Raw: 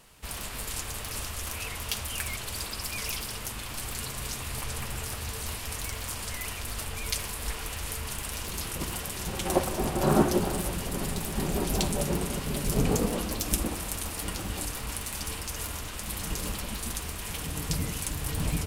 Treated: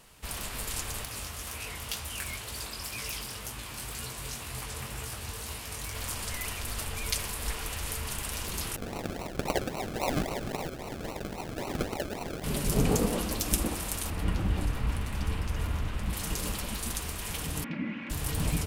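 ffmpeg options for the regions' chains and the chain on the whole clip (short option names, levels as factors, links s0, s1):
-filter_complex "[0:a]asettb=1/sr,asplit=3[s0][s1][s2];[s0]atrim=end=1.054[s3];[s1]atrim=start=1.05:end=5.95,asetpts=PTS-STARTPTS,afade=t=in:d=0.004:c=qsin,afade=t=out:st=4.896:d=0.004:c=qsin,highpass=41,flanger=delay=16:depth=6.9:speed=2[s4];[s2]atrim=start=5.946[s5];[s3][s4]acrossfade=d=0.004:c1=hsin:c2=qsin[s6];[s6][s5]acrossfade=d=0.004:c1=qsin:c2=hsin,asettb=1/sr,asplit=3[s7][s8][s9];[s7]atrim=end=8.764[s10];[s8]atrim=start=8.76:end=12.44,asetpts=PTS-STARTPTS,afade=t=in:d=0.004:c=qsin,afade=t=out:st=3.676:d=0.004:c=qsin,highpass=f=620:w=0.5412,highpass=f=620:w=1.3066,acrusher=samples=37:mix=1:aa=0.000001:lfo=1:lforange=22.2:lforate=3.7[s11];[s9]atrim=start=12.436[s12];[s10][s11]acrossfade=d=0.004:c1=hsin:c2=qsin[s13];[s13][s12]acrossfade=d=0.004:c1=qsin:c2=hsin,asettb=1/sr,asplit=3[s14][s15][s16];[s14]atrim=end=14.104[s17];[s15]atrim=start=14.1:end=16.13,asetpts=PTS-STARTPTS,afade=t=in:d=0.004:c=qsin,afade=t=out:st=2.026:d=0.004:c=qsin,bass=f=250:g=9,treble=f=4000:g=-14,asoftclip=type=hard:threshold=0.112[s18];[s16]atrim=start=16.126[s19];[s17][s18]acrossfade=d=0.004:c1=hsin:c2=qsin[s20];[s20][s19]acrossfade=d=0.004:c1=qsin:c2=hsin,asettb=1/sr,asplit=3[s21][s22][s23];[s21]atrim=end=17.644[s24];[s22]atrim=start=17.64:end=18.1,asetpts=PTS-STARTPTS,afade=t=in:d=0.004:c=qsin,afade=t=out:st=0.456:d=0.004:c=qsin,highpass=f=170:w=0.5412,highpass=f=170:w=1.3066,equalizer=f=220:t=q:w=4:g=9,equalizer=f=470:t=q:w=4:g=-10,equalizer=f=780:t=q:w=4:g=-9,equalizer=f=1200:t=q:w=4:g=-6,equalizer=f=2300:t=q:w=4:g=6,lowpass=f=2300:w=0.5412,lowpass=f=2300:w=1.3066,aecho=1:1:3.6:0.5,atrim=end_sample=20286[s25];[s23]atrim=start=18.096[s26];[s24][s25]acrossfade=d=0.004:c1=hsin:c2=qsin[s27];[s27][s26]acrossfade=d=0.004:c1=qsin:c2=hsin"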